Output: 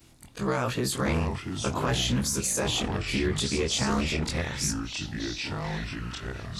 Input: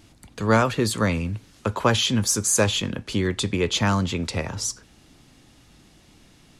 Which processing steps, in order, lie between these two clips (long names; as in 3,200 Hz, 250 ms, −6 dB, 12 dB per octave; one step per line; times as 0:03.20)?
every overlapping window played backwards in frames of 49 ms
high-shelf EQ 9,700 Hz +9 dB
brickwall limiter −18 dBFS, peak gain reduction 10 dB
delay with pitch and tempo change per echo 428 ms, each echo −5 semitones, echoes 3, each echo −6 dB
highs frequency-modulated by the lows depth 0.18 ms